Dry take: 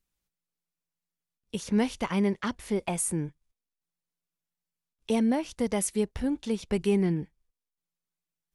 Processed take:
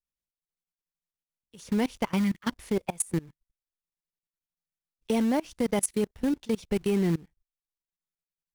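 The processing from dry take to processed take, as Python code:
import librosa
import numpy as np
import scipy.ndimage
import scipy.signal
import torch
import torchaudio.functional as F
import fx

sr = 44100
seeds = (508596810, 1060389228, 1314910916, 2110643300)

p1 = fx.spec_box(x, sr, start_s=2.18, length_s=0.24, low_hz=340.0, high_hz=1200.0, gain_db=-20)
p2 = fx.quant_companded(p1, sr, bits=4)
p3 = p1 + F.gain(torch.from_numpy(p2), -4.0).numpy()
p4 = fx.noise_reduce_blind(p3, sr, reduce_db=7)
y = fx.level_steps(p4, sr, step_db=24)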